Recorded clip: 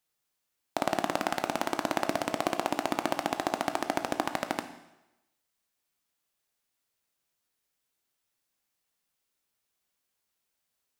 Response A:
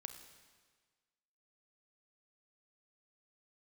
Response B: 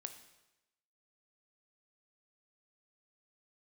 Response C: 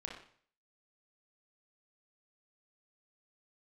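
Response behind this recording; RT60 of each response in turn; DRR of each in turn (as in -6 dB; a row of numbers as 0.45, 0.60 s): B; 1.5, 0.95, 0.50 s; 7.0, 7.5, -0.5 dB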